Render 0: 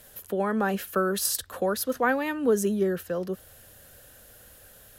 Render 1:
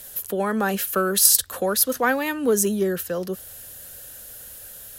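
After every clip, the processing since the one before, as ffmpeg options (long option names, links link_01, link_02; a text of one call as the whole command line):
ffmpeg -i in.wav -af "aeval=exprs='0.251*(cos(1*acos(clip(val(0)/0.251,-1,1)))-cos(1*PI/2))+0.00355*(cos(5*acos(clip(val(0)/0.251,-1,1)))-cos(5*PI/2))':channel_layout=same,highshelf=frequency=3600:gain=11,volume=2dB" out.wav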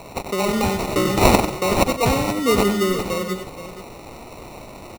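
ffmpeg -i in.wav -af "acrusher=samples=27:mix=1:aa=0.000001,aecho=1:1:95|134|476:0.376|0.133|0.251,volume=2dB" out.wav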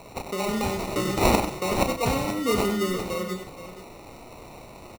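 ffmpeg -i in.wav -filter_complex "[0:a]asplit=2[link_01][link_02];[link_02]adelay=33,volume=-8dB[link_03];[link_01][link_03]amix=inputs=2:normalize=0,volume=-6.5dB" out.wav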